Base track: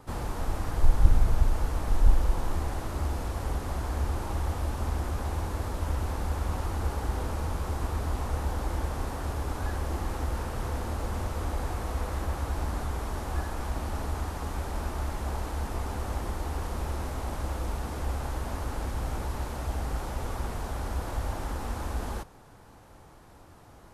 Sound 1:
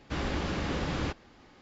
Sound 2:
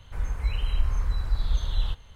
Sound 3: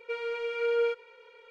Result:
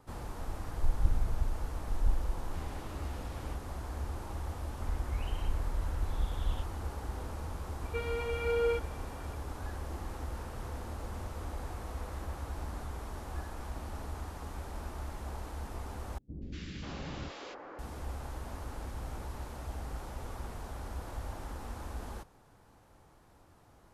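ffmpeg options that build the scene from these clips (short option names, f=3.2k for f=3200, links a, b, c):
-filter_complex "[1:a]asplit=2[a][b];[0:a]volume=-8.5dB[c];[a]flanger=delay=15.5:depth=6.9:speed=1.4[d];[2:a]aresample=8000,aresample=44100[e];[b]acrossover=split=350|1700[f][g][h];[h]adelay=240[i];[g]adelay=540[j];[f][j][i]amix=inputs=3:normalize=0[k];[c]asplit=2[l][m];[l]atrim=end=16.184[n];[k]atrim=end=1.61,asetpts=PTS-STARTPTS,volume=-8dB[o];[m]atrim=start=17.786[p];[d]atrim=end=1.61,asetpts=PTS-STARTPTS,volume=-14.5dB,afade=t=in:d=0.004:c=hsin,afade=t=out:st=1.606:d=0.004:c=hsin,adelay=2420[q];[e]atrim=end=2.15,asetpts=PTS-STARTPTS,volume=-9dB,afade=t=in:d=0.004:c=hsin,afade=t=out:st=2.146:d=0.004:c=hsin,adelay=206829S[r];[3:a]atrim=end=1.5,asetpts=PTS-STARTPTS,volume=-3dB,afade=t=in:d=0.004:c=hsin,afade=t=out:st=1.496:d=0.004:c=hsin,adelay=7850[s];[n][o]acrossfade=d=0.004:c1=hsin:c2=hsin[t];[t][p]acrossfade=d=0.004:c1=hsin:c2=hsin[u];[u][q][r][s]amix=inputs=4:normalize=0"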